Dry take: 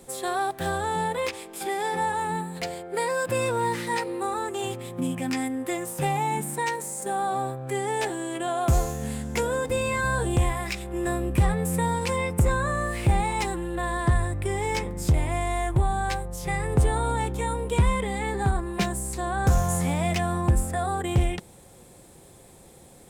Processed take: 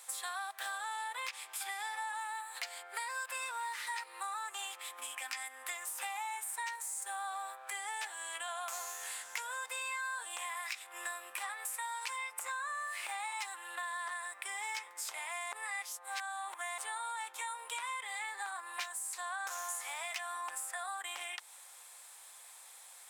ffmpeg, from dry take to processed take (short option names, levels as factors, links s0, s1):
-filter_complex "[0:a]asettb=1/sr,asplit=3[s0][s1][s2];[s0]atrim=end=11.504[s3];[s1]atrim=start=11.5:end=12.32,asetpts=PTS-STARTPTS,afade=t=in:d=0.004:c=qsin,afade=t=out:st=0.816:d=0.004:c=qsin,highpass=490[s4];[s2]atrim=start=12.316[s5];[s3][s4]acrossfade=d=0.004:c1=hsin:c2=qsin[s6];[s6][s5]acrossfade=d=0.004:c1=qsin:c2=hsin,asplit=3[s7][s8][s9];[s7]atrim=end=15.522[s10];[s8]atrim=start=15.518:end=16.782,asetpts=PTS-STARTPTS,areverse[s11];[s9]atrim=start=16.778[s12];[s10][s11]acrossfade=d=0.004:c1=hsin:c2=hsin[s13];[s13][s12]acrossfade=d=0.004:c1=hsin:c2=hsin,highpass=f=990:w=0.5412,highpass=f=990:w=1.3066,acompressor=threshold=0.01:ratio=4,volume=1.19"